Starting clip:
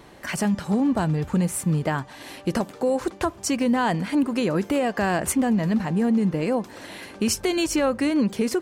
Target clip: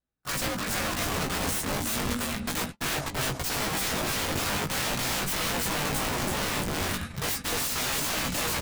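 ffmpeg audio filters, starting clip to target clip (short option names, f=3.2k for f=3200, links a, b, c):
-filter_complex "[0:a]afreqshift=-82,aecho=1:1:332|664|996|1328:0.631|0.215|0.0729|0.0248,aeval=exprs='(mod(15.8*val(0)+1,2)-1)/15.8':c=same,asplit=2[a][b];[b]adelay=18,volume=-4dB[c];[a][c]amix=inputs=2:normalize=0,afreqshift=-300,flanger=delay=5.7:depth=5.9:regen=75:speed=0.36:shape=triangular,aeval=exprs='val(0)+0.00224*(sin(2*PI*60*n/s)+sin(2*PI*2*60*n/s)/2+sin(2*PI*3*60*n/s)/3+sin(2*PI*4*60*n/s)/4+sin(2*PI*5*60*n/s)/5)':c=same,agate=range=-43dB:threshold=-37dB:ratio=16:detection=peak,volume=3dB"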